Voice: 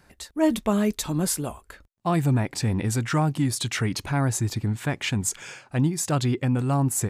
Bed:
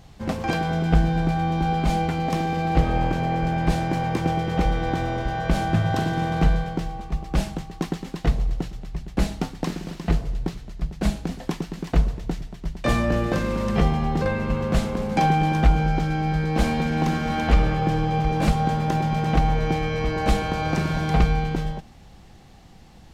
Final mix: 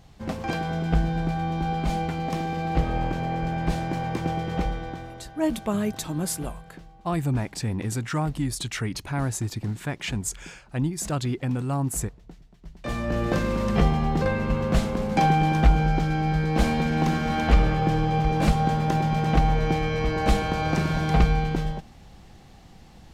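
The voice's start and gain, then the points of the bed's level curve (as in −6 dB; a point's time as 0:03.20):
5.00 s, −3.5 dB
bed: 0:04.58 −4 dB
0:05.34 −18.5 dB
0:12.46 −18.5 dB
0:13.30 −0.5 dB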